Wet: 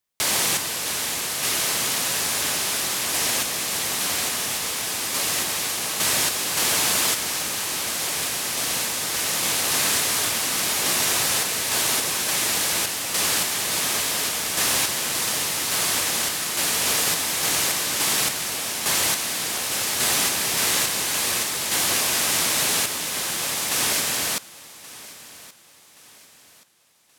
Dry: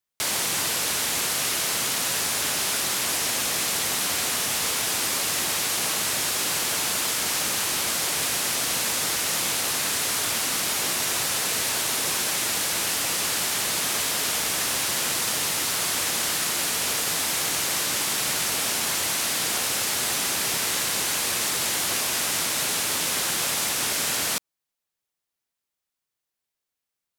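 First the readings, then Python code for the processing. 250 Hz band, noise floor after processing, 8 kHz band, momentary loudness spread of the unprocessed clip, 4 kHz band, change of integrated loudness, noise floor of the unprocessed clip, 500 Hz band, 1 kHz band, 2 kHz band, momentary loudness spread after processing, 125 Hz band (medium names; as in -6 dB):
+1.5 dB, -52 dBFS, +1.5 dB, 0 LU, +1.5 dB, +1.5 dB, -85 dBFS, +1.5 dB, +1.5 dB, +1.5 dB, 5 LU, +1.5 dB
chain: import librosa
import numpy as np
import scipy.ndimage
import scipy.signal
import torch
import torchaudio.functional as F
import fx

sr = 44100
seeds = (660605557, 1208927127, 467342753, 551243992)

y = fx.notch(x, sr, hz=1400.0, q=26.0)
y = fx.tremolo_random(y, sr, seeds[0], hz=3.5, depth_pct=55)
y = fx.echo_feedback(y, sr, ms=1126, feedback_pct=38, wet_db=-19.0)
y = F.gain(torch.from_numpy(y), 4.5).numpy()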